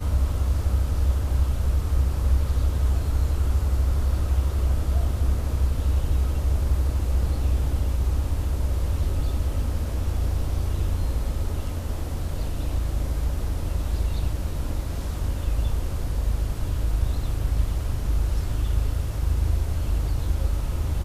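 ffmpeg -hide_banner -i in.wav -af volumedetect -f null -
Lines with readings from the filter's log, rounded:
mean_volume: -22.6 dB
max_volume: -10.6 dB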